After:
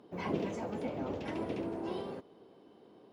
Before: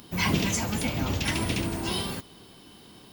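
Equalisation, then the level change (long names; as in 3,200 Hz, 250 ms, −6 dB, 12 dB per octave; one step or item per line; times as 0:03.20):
resonant band-pass 480 Hz, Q 1.7
0.0 dB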